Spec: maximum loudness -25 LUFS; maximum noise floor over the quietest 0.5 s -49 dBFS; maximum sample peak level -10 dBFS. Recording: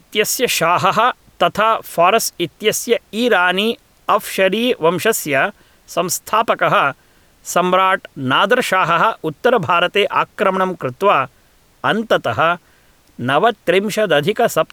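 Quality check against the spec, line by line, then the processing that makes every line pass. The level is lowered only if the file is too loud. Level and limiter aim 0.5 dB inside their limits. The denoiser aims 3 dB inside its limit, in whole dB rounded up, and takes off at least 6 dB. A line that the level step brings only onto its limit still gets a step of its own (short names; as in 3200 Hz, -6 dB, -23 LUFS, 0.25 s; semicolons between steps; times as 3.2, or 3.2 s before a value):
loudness -16.0 LUFS: fail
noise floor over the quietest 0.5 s -53 dBFS: OK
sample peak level -2.5 dBFS: fail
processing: gain -9.5 dB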